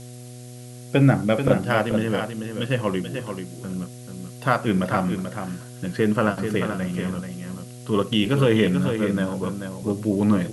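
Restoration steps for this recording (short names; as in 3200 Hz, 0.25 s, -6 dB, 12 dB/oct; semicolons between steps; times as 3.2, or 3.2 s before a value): de-hum 123 Hz, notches 6; denoiser 28 dB, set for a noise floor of -39 dBFS; inverse comb 0.436 s -7.5 dB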